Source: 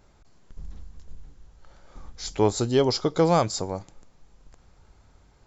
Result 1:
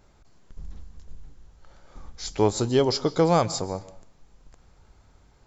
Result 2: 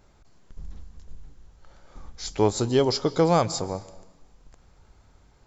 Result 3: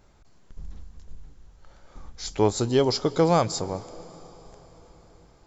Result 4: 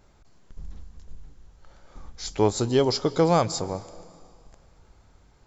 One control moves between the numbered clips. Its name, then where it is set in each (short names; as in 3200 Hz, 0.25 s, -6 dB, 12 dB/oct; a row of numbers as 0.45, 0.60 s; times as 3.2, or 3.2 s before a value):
plate-style reverb, RT60: 0.51, 1.1, 5, 2.3 s